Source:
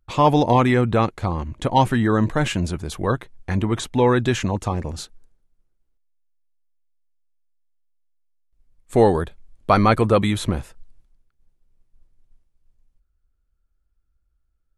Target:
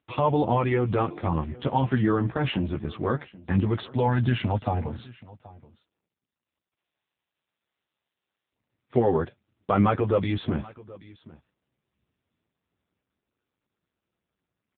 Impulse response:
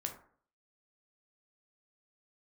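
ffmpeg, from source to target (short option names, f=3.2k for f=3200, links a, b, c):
-filter_complex "[0:a]asplit=3[a][b][c];[a]afade=t=out:st=1.09:d=0.02[d];[b]bandreject=f=345.7:t=h:w=4,bandreject=f=691.4:t=h:w=4,bandreject=f=1.0371k:t=h:w=4,bandreject=f=1.3828k:t=h:w=4,bandreject=f=1.7285k:t=h:w=4,bandreject=f=2.0742k:t=h:w=4,bandreject=f=2.4199k:t=h:w=4,bandreject=f=2.7656k:t=h:w=4,bandreject=f=3.1113k:t=h:w=4,bandreject=f=3.457k:t=h:w=4,bandreject=f=3.8027k:t=h:w=4,bandreject=f=4.1484k:t=h:w=4,bandreject=f=4.4941k:t=h:w=4,bandreject=f=4.8398k:t=h:w=4,bandreject=f=5.1855k:t=h:w=4,bandreject=f=5.5312k:t=h:w=4,bandreject=f=5.8769k:t=h:w=4,bandreject=f=6.2226k:t=h:w=4,bandreject=f=6.5683k:t=h:w=4,bandreject=f=6.914k:t=h:w=4,bandreject=f=7.2597k:t=h:w=4,bandreject=f=7.6054k:t=h:w=4,bandreject=f=7.9511k:t=h:w=4,bandreject=f=8.2968k:t=h:w=4,afade=t=in:st=1.09:d=0.02,afade=t=out:st=2.46:d=0.02[e];[c]afade=t=in:st=2.46:d=0.02[f];[d][e][f]amix=inputs=3:normalize=0,asettb=1/sr,asplit=3[g][h][i];[g]atrim=end=4.054[j];[h]atrim=start=4.05:end=4.86,asetpts=PTS-STARTPTS,afade=t=in:d=0.004:c=qsin,afade=t=out:st=0.806:d=0.004:c=qsin,aecho=1:1:1.4:0.56,atrim=end_sample=35721[k];[i]atrim=start=4.856[l];[j][k]acrossfade=d=0.004:c1=hsin:c2=qsin[m];[m][l]acrossfade=d=0.004:c1=qsin:c2=hsin,alimiter=limit=-11.5dB:level=0:latency=1:release=76,flanger=delay=7.6:depth=8.6:regen=-9:speed=0.22:shape=triangular,aecho=1:1:779:0.0891,volume=2.5dB" -ar 8000 -c:a libopencore_amrnb -b:a 6700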